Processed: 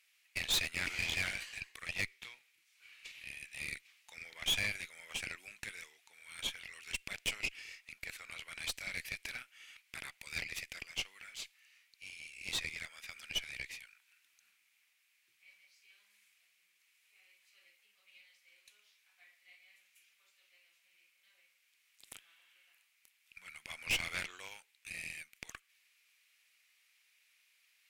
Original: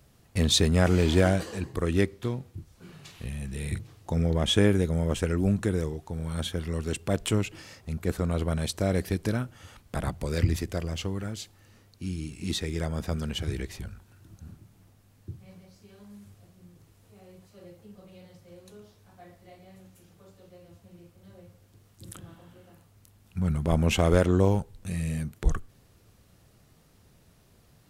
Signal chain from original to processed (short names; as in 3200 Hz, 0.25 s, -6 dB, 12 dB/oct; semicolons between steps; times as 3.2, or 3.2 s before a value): resonant high-pass 2300 Hz, resonance Q 4.5; tube stage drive 25 dB, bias 0.8; gain -2.5 dB